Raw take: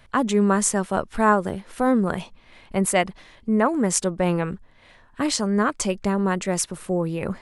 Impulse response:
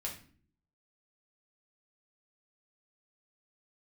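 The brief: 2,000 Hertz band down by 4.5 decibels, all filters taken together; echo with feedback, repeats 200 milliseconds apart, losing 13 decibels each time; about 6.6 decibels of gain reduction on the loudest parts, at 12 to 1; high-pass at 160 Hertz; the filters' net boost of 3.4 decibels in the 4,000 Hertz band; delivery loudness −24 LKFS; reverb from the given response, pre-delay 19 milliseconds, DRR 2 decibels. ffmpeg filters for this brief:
-filter_complex "[0:a]highpass=160,equalizer=frequency=2000:width_type=o:gain=-7.5,equalizer=frequency=4000:width_type=o:gain=6.5,acompressor=threshold=-21dB:ratio=12,aecho=1:1:200|400|600:0.224|0.0493|0.0108,asplit=2[link_01][link_02];[1:a]atrim=start_sample=2205,adelay=19[link_03];[link_02][link_03]afir=irnorm=-1:irlink=0,volume=-2dB[link_04];[link_01][link_04]amix=inputs=2:normalize=0,volume=1dB"

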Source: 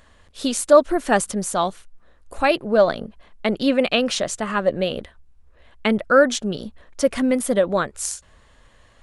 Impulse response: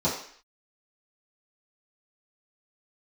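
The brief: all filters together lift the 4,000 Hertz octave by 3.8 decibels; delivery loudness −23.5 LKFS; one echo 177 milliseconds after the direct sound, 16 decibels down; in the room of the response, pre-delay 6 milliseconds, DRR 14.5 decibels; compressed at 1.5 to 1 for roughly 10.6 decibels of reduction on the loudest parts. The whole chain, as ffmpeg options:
-filter_complex "[0:a]equalizer=frequency=4000:width_type=o:gain=5,acompressor=threshold=-38dB:ratio=1.5,aecho=1:1:177:0.158,asplit=2[link_01][link_02];[1:a]atrim=start_sample=2205,adelay=6[link_03];[link_02][link_03]afir=irnorm=-1:irlink=0,volume=-26.5dB[link_04];[link_01][link_04]amix=inputs=2:normalize=0,volume=4.5dB"

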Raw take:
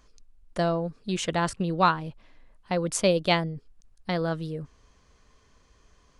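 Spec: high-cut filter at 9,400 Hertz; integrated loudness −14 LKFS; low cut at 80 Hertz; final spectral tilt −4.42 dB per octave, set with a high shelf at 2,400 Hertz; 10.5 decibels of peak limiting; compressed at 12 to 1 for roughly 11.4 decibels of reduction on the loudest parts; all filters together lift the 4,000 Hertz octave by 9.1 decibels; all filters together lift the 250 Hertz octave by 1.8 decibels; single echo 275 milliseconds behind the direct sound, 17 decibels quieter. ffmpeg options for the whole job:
ffmpeg -i in.wav -af "highpass=80,lowpass=9400,equalizer=frequency=250:width_type=o:gain=3.5,highshelf=frequency=2400:gain=3.5,equalizer=frequency=4000:width_type=o:gain=8.5,acompressor=threshold=-25dB:ratio=12,alimiter=limit=-20dB:level=0:latency=1,aecho=1:1:275:0.141,volume=19dB" out.wav

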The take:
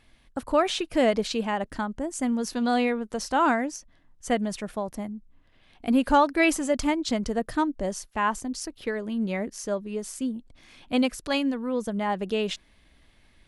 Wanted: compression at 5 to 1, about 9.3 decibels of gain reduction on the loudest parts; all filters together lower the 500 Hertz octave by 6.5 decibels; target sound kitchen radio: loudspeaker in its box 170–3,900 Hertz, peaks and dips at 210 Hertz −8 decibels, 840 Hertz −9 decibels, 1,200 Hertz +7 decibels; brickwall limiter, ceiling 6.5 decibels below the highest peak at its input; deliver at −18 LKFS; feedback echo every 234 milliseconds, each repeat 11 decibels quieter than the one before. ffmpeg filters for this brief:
ffmpeg -i in.wav -af "equalizer=frequency=500:width_type=o:gain=-7,acompressor=threshold=-29dB:ratio=5,alimiter=level_in=1dB:limit=-24dB:level=0:latency=1,volume=-1dB,highpass=170,equalizer=frequency=210:width_type=q:width=4:gain=-8,equalizer=frequency=840:width_type=q:width=4:gain=-9,equalizer=frequency=1200:width_type=q:width=4:gain=7,lowpass=frequency=3900:width=0.5412,lowpass=frequency=3900:width=1.3066,aecho=1:1:234|468|702:0.282|0.0789|0.0221,volume=19.5dB" out.wav

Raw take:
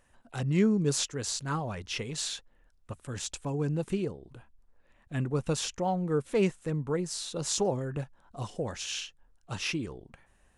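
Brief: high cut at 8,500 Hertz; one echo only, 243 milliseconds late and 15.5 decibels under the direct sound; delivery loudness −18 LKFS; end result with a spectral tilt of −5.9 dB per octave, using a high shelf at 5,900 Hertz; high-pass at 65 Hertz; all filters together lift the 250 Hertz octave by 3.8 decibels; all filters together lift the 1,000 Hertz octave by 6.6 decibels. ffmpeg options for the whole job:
ffmpeg -i in.wav -af "highpass=65,lowpass=8500,equalizer=frequency=250:width_type=o:gain=5,equalizer=frequency=1000:width_type=o:gain=9,highshelf=frequency=5900:gain=-7.5,aecho=1:1:243:0.168,volume=11dB" out.wav

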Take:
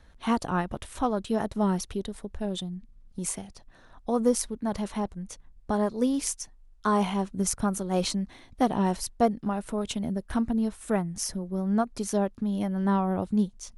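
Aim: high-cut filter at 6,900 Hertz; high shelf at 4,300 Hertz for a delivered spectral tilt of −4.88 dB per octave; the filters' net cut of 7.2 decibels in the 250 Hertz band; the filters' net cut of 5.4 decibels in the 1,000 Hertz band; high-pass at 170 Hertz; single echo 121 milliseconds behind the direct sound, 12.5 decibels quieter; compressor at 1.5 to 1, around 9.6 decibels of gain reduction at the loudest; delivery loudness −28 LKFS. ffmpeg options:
ffmpeg -i in.wav -af "highpass=170,lowpass=6900,equalizer=frequency=250:width_type=o:gain=-7,equalizer=frequency=1000:width_type=o:gain=-6.5,highshelf=frequency=4300:gain=-5.5,acompressor=threshold=-49dB:ratio=1.5,aecho=1:1:121:0.237,volume=13.5dB" out.wav

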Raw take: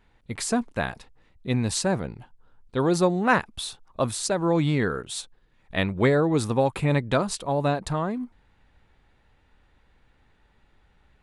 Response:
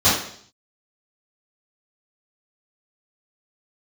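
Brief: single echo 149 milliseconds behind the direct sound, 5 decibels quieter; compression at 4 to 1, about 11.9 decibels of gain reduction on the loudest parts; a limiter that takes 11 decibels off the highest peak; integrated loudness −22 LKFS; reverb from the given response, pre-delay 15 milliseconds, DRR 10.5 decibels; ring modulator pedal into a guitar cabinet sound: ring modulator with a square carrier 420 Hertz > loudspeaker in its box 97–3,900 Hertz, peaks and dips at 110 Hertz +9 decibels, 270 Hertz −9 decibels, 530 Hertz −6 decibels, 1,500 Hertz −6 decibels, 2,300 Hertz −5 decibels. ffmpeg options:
-filter_complex "[0:a]acompressor=threshold=-30dB:ratio=4,alimiter=level_in=2.5dB:limit=-24dB:level=0:latency=1,volume=-2.5dB,aecho=1:1:149:0.562,asplit=2[link_01][link_02];[1:a]atrim=start_sample=2205,adelay=15[link_03];[link_02][link_03]afir=irnorm=-1:irlink=0,volume=-31.5dB[link_04];[link_01][link_04]amix=inputs=2:normalize=0,aeval=exprs='val(0)*sgn(sin(2*PI*420*n/s))':channel_layout=same,highpass=97,equalizer=frequency=110:width_type=q:width=4:gain=9,equalizer=frequency=270:width_type=q:width=4:gain=-9,equalizer=frequency=530:width_type=q:width=4:gain=-6,equalizer=frequency=1500:width_type=q:width=4:gain=-6,equalizer=frequency=2300:width_type=q:width=4:gain=-5,lowpass=frequency=3900:width=0.5412,lowpass=frequency=3900:width=1.3066,volume=16dB"

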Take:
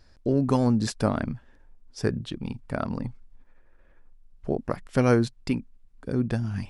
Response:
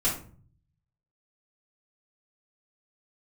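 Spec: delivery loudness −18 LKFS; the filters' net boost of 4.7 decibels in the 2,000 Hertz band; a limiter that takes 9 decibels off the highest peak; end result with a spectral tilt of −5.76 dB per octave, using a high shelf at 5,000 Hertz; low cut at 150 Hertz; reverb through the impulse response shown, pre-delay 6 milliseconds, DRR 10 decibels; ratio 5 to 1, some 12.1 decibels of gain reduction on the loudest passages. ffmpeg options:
-filter_complex "[0:a]highpass=150,equalizer=frequency=2000:width_type=o:gain=7.5,highshelf=frequency=5000:gain=-6,acompressor=threshold=-30dB:ratio=5,alimiter=level_in=0.5dB:limit=-24dB:level=0:latency=1,volume=-0.5dB,asplit=2[link_01][link_02];[1:a]atrim=start_sample=2205,adelay=6[link_03];[link_02][link_03]afir=irnorm=-1:irlink=0,volume=-19.5dB[link_04];[link_01][link_04]amix=inputs=2:normalize=0,volume=19.5dB"

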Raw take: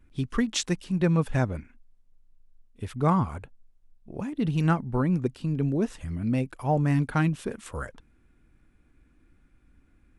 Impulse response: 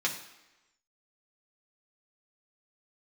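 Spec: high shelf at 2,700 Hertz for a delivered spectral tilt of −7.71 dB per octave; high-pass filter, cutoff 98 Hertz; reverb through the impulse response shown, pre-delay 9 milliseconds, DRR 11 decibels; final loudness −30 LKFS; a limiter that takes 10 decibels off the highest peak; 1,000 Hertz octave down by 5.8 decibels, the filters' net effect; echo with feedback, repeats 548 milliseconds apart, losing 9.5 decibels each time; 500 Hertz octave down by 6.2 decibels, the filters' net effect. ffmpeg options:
-filter_complex "[0:a]highpass=98,equalizer=frequency=500:width_type=o:gain=-7,equalizer=frequency=1000:width_type=o:gain=-4,highshelf=frequency=2700:gain=-8.5,alimiter=level_in=0.5dB:limit=-24dB:level=0:latency=1,volume=-0.5dB,aecho=1:1:548|1096|1644|2192:0.335|0.111|0.0365|0.012,asplit=2[link_01][link_02];[1:a]atrim=start_sample=2205,adelay=9[link_03];[link_02][link_03]afir=irnorm=-1:irlink=0,volume=-18.5dB[link_04];[link_01][link_04]amix=inputs=2:normalize=0,volume=4dB"

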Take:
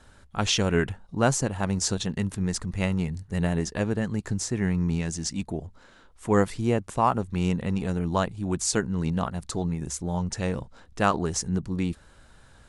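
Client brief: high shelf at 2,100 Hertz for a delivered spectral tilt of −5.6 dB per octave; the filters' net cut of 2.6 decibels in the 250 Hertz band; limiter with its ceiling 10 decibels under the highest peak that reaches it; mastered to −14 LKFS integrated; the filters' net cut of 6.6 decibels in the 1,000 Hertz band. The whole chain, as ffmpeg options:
ffmpeg -i in.wav -af "equalizer=frequency=250:width_type=o:gain=-3.5,equalizer=frequency=1000:width_type=o:gain=-7,highshelf=frequency=2100:gain=-7,volume=19dB,alimiter=limit=-1.5dB:level=0:latency=1" out.wav

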